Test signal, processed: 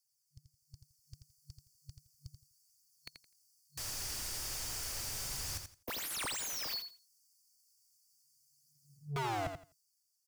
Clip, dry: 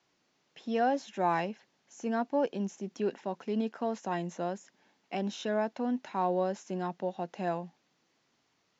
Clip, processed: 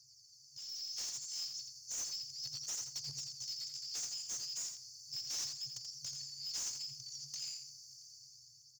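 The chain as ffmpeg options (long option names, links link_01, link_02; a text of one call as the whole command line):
ffmpeg -i in.wav -filter_complex "[0:a]afftfilt=real='re*(1-between(b*sr/4096,140,4400))':imag='im*(1-between(b*sr/4096,140,4400))':win_size=4096:overlap=0.75,highshelf=frequency=3300:gain=2.5,aeval=exprs='(mod(42.2*val(0)+1,2)-1)/42.2':channel_layout=same,areverse,acompressor=threshold=-46dB:ratio=20,areverse,aphaser=in_gain=1:out_gain=1:delay=3.1:decay=0.38:speed=0.34:type=triangular,asplit=2[link_01][link_02];[link_02]highpass=frequency=720:poles=1,volume=29dB,asoftclip=type=tanh:threshold=-35dB[link_03];[link_01][link_03]amix=inputs=2:normalize=0,lowpass=frequency=4000:poles=1,volume=-6dB,dynaudnorm=framelen=160:gausssize=11:maxgain=9dB,aecho=1:1:84|168|252:0.447|0.0893|0.0179,volume=-3dB" out.wav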